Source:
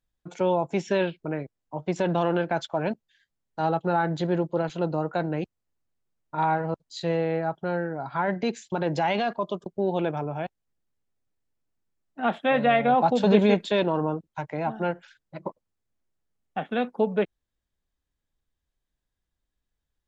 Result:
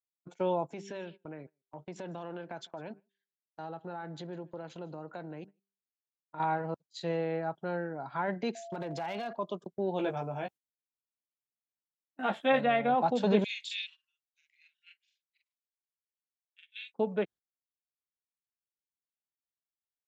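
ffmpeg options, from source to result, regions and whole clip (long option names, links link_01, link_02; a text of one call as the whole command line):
ffmpeg -i in.wav -filter_complex "[0:a]asettb=1/sr,asplit=3[link_01][link_02][link_03];[link_01]atrim=end=0.734[link_04];[link_02]atrim=start=0.73:end=6.4,asetpts=PTS-STARTPTS,afade=type=in:duration=0.004:curve=qsin,afade=type=out:start_time=5.666:duration=0.004:curve=qsin,bandreject=frequency=197.5:width_type=h:width=4,bandreject=frequency=395:width_type=h:width=4,acompressor=threshold=-35dB:ratio=2.5:attack=3.2:release=140:knee=1:detection=peak,aecho=1:1:154:0.0708,atrim=end_sample=250047[link_05];[link_03]atrim=start=6.396[link_06];[link_04][link_05]acrossfade=duration=0.004:curve1=hsin:curve2=qsin[link_07];[link_07][link_06]acrossfade=duration=0.004:curve1=qsin:curve2=hsin,asettb=1/sr,asplit=3[link_08][link_09][link_10];[link_08]atrim=end=8.554[link_11];[link_09]atrim=start=8.55:end=9.35,asetpts=PTS-STARTPTS,afade=type=in:duration=0.004:curve=qsin,afade=type=out:start_time=0.796:duration=0.004:curve=qsin,acompressor=threshold=-26dB:ratio=5:attack=3.2:release=140:knee=1:detection=peak,aeval=exprs='val(0)+0.0158*sin(2*PI*680*n/s)':channel_layout=same,volume=24dB,asoftclip=hard,volume=-24dB[link_12];[link_10]atrim=start=9.346[link_13];[link_11][link_12]acrossfade=duration=0.004:curve1=hsin:curve2=qsin[link_14];[link_14][link_13]acrossfade=duration=0.004:curve1=qsin:curve2=hsin,asettb=1/sr,asplit=3[link_15][link_16][link_17];[link_15]atrim=end=9.984[link_18];[link_16]atrim=start=9.98:end=12.61,asetpts=PTS-STARTPTS,afade=type=in:duration=0.004:curve=qsin,afade=type=out:start_time=2.626:duration=0.004:curve=qsin,aemphasis=mode=production:type=cd,asplit=2[link_19][link_20];[link_20]adelay=15,volume=-3.5dB[link_21];[link_19][link_21]amix=inputs=2:normalize=0,atrim=end_sample=115983[link_22];[link_17]atrim=start=12.606[link_23];[link_18][link_22]acrossfade=duration=0.004:curve1=hsin:curve2=qsin[link_24];[link_24][link_23]acrossfade=duration=0.004:curve1=qsin:curve2=hsin,asettb=1/sr,asplit=3[link_25][link_26][link_27];[link_25]atrim=end=13.444[link_28];[link_26]atrim=start=13.44:end=16.94,asetpts=PTS-STARTPTS,afade=type=in:duration=0.004:curve=qsin,afade=type=out:start_time=3.496:duration=0.004:curve=qsin,asuperpass=centerf=5100:order=12:qfactor=0.63,highshelf=frequency=4100:gain=4.5,asplit=2[link_29][link_30];[link_30]adelay=44,volume=-2dB[link_31];[link_29][link_31]amix=inputs=2:normalize=0,atrim=end_sample=154350[link_32];[link_27]atrim=start=16.936[link_33];[link_28][link_32]acrossfade=duration=0.004:curve1=hsin:curve2=qsin[link_34];[link_34][link_33]acrossfade=duration=0.004:curve1=qsin:curve2=hsin,highpass=130,agate=range=-17dB:threshold=-42dB:ratio=16:detection=peak,volume=-6.5dB" out.wav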